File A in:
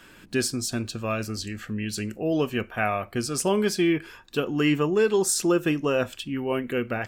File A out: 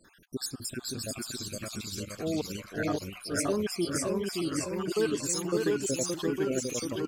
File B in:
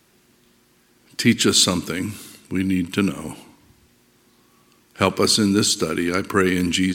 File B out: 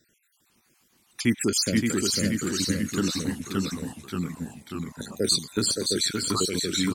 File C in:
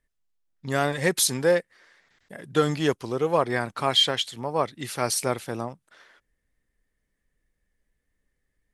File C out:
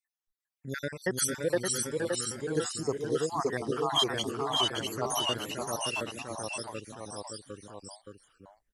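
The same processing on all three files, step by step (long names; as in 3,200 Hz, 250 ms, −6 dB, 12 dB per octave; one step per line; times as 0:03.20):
time-frequency cells dropped at random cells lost 65%
dynamic equaliser 2,700 Hz, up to −5 dB, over −45 dBFS, Q 2.8
delay with pitch and tempo change per echo 402 ms, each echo −1 semitone, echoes 3
high-shelf EQ 4,800 Hz +6.5 dB
on a send: single-tap delay 571 ms −4.5 dB
on the sum: level −6.5 dB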